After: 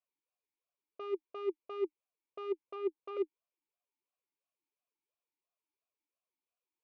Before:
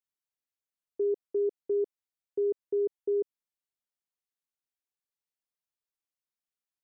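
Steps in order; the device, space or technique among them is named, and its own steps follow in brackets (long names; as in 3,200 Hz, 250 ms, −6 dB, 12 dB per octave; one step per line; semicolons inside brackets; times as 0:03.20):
0:02.65–0:03.17: treble cut that deepens with the level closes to 450 Hz, closed at −26 dBFS
talk box (tube saturation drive 40 dB, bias 0.4; formant filter swept between two vowels a-u 2.9 Hz)
level +14.5 dB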